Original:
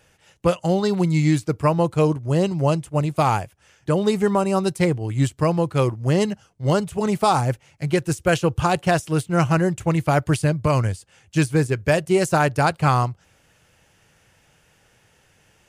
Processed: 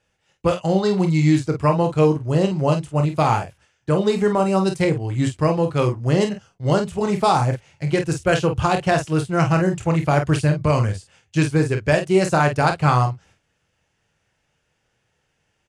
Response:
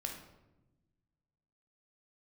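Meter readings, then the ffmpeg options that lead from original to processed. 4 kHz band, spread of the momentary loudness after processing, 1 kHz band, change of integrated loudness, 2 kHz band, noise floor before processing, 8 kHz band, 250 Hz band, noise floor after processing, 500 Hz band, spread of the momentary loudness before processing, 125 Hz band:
+1.0 dB, 6 LU, +1.0 dB, +1.0 dB, +1.0 dB, −60 dBFS, −1.5 dB, +1.0 dB, −71 dBFS, +1.5 dB, 5 LU, +1.0 dB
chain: -af "agate=range=-12dB:threshold=-51dB:ratio=16:detection=peak,lowpass=7900,aecho=1:1:26|48:0.376|0.398"

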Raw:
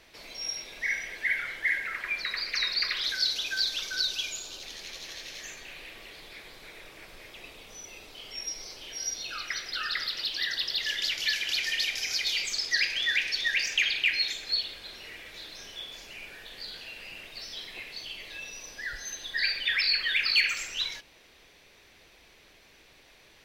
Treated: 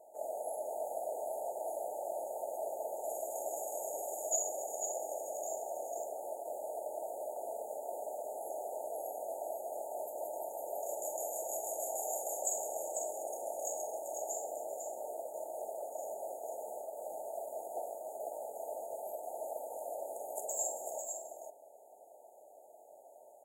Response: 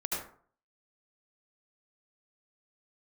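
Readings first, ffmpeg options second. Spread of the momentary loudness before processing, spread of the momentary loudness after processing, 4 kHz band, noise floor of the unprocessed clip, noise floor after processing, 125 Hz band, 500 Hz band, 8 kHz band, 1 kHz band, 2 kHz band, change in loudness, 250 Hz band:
19 LU, 7 LU, below −40 dB, −58 dBFS, −58 dBFS, can't be measured, +15.5 dB, −0.5 dB, +7.5 dB, below −40 dB, −11.0 dB, −2.5 dB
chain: -af "afftfilt=real='re*(1-between(b*sr/4096,920,6600))':imag='im*(1-between(b*sr/4096,920,6600))':win_size=4096:overlap=0.75,agate=range=-7dB:threshold=-54dB:ratio=16:detection=peak,highpass=frequency=630:width_type=q:width=4.9,aecho=1:1:42|49|266|392|496|499:0.266|0.2|0.141|0.133|0.501|0.168,volume=5.5dB"

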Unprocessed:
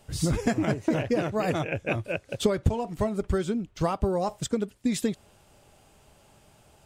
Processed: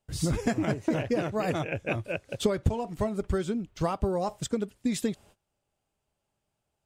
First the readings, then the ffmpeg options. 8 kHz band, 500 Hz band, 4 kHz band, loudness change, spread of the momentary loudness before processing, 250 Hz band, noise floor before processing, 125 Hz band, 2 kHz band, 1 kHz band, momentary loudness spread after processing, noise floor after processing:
−2.0 dB, −2.0 dB, −2.0 dB, −2.0 dB, 4 LU, −2.0 dB, −59 dBFS, −2.0 dB, −2.0 dB, −2.0 dB, 4 LU, −82 dBFS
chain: -af "agate=range=-22dB:threshold=-51dB:ratio=16:detection=peak,volume=-2dB"

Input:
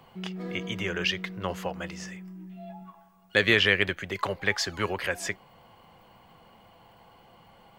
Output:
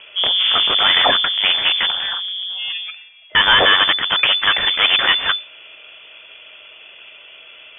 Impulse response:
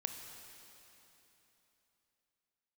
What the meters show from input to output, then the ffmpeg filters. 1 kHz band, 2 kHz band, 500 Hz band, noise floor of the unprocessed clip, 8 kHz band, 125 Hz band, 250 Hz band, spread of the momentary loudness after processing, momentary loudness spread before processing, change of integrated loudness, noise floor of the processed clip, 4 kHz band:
+16.0 dB, +10.5 dB, +3.5 dB, −57 dBFS, below −40 dB, −5.0 dB, −2.5 dB, 12 LU, 22 LU, +13.5 dB, −43 dBFS, +20.0 dB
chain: -af "apsyclip=20dB,aeval=exprs='1.12*(cos(1*acos(clip(val(0)/1.12,-1,1)))-cos(1*PI/2))+0.282*(cos(2*acos(clip(val(0)/1.12,-1,1)))-cos(2*PI/2))+0.0158*(cos(4*acos(clip(val(0)/1.12,-1,1)))-cos(4*PI/2))+0.0126*(cos(6*acos(clip(val(0)/1.12,-1,1)))-cos(6*PI/2))+0.316*(cos(8*acos(clip(val(0)/1.12,-1,1)))-cos(8*PI/2))':channel_layout=same,lowpass=frequency=3000:width_type=q:width=0.5098,lowpass=frequency=3000:width_type=q:width=0.6013,lowpass=frequency=3000:width_type=q:width=0.9,lowpass=frequency=3000:width_type=q:width=2.563,afreqshift=-3500,volume=-6dB"

